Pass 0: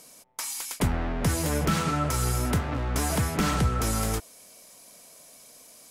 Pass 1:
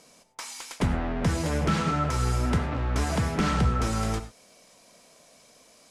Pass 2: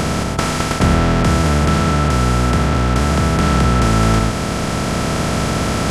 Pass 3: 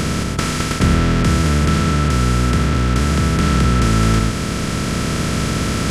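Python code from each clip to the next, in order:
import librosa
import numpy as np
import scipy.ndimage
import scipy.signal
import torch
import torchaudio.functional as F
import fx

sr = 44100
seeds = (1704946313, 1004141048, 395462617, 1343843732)

y1 = fx.air_absorb(x, sr, metres=72.0)
y1 = fx.rev_gated(y1, sr, seeds[0], gate_ms=130, shape='flat', drr_db=10.0)
y2 = fx.bin_compress(y1, sr, power=0.2)
y2 = fx.rider(y2, sr, range_db=3, speed_s=2.0)
y2 = F.gain(torch.from_numpy(y2), 5.0).numpy()
y3 = fx.peak_eq(y2, sr, hz=770.0, db=-10.5, octaves=0.88)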